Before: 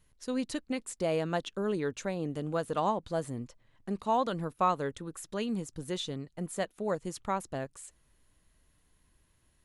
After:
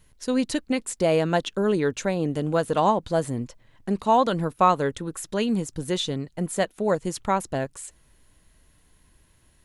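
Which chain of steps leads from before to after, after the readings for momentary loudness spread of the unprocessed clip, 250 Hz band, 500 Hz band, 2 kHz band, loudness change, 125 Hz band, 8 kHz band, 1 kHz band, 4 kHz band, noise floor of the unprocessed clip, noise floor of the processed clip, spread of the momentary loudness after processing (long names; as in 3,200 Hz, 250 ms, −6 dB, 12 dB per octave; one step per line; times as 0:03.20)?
10 LU, +9.0 dB, +9.0 dB, +9.0 dB, +9.0 dB, +9.0 dB, +9.0 dB, +8.5 dB, +9.0 dB, −70 dBFS, −61 dBFS, 10 LU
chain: notch filter 1,200 Hz, Q 16
level +9 dB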